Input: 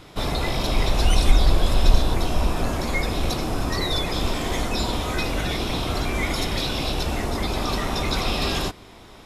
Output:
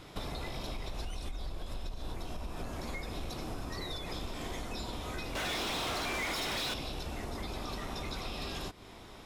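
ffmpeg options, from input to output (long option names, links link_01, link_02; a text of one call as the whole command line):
ffmpeg -i in.wav -filter_complex "[0:a]alimiter=limit=-12.5dB:level=0:latency=1:release=155,acompressor=threshold=-31dB:ratio=6,asettb=1/sr,asplit=3[link_01][link_02][link_03];[link_01]atrim=end=5.354[link_04];[link_02]atrim=start=5.35:end=6.74,asetpts=PTS-STARTPTS,afade=type=in:duration=0.004:curve=qsin,afade=type=out:start_time=1.386:duration=0.004:curve=qsin,asplit=2[link_05][link_06];[link_06]highpass=frequency=720:poles=1,volume=26dB,asoftclip=type=tanh:threshold=-23.5dB[link_07];[link_05][link_07]amix=inputs=2:normalize=0,lowpass=frequency=6200:poles=1,volume=-6dB[link_08];[link_03]atrim=start=6.736[link_09];[link_04][link_08]acrossfade=duration=0.004:curve1=hsin:curve2=qsin[link_10];[link_10][link_09]acrossfade=duration=0.004:curve1=qsin:curve2=hsin,volume=-5dB" out.wav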